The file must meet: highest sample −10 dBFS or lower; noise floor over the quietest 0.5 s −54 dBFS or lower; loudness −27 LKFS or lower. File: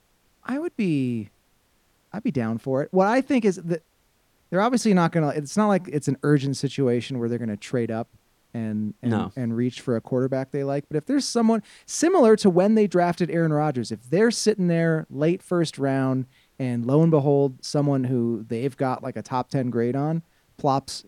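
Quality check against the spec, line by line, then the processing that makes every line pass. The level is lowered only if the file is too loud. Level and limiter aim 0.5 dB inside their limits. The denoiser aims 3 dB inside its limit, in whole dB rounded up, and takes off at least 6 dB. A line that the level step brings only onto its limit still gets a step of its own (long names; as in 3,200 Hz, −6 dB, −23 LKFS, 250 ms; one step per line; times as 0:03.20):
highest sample −5.5 dBFS: out of spec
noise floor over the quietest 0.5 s −65 dBFS: in spec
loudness −23.5 LKFS: out of spec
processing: level −4 dB
brickwall limiter −10.5 dBFS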